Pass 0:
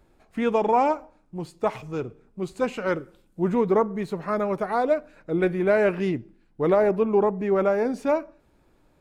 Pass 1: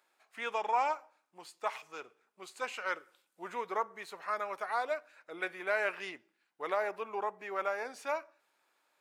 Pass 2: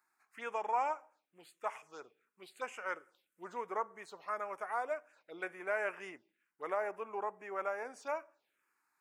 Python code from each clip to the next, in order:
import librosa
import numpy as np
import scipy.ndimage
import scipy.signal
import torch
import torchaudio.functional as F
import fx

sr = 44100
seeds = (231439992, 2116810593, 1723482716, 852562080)

y1 = scipy.signal.sosfilt(scipy.signal.butter(2, 1100.0, 'highpass', fs=sr, output='sos'), x)
y1 = y1 * librosa.db_to_amplitude(-2.5)
y2 = fx.env_phaser(y1, sr, low_hz=530.0, high_hz=4100.0, full_db=-37.5)
y2 = y2 * librosa.db_to_amplitude(-2.5)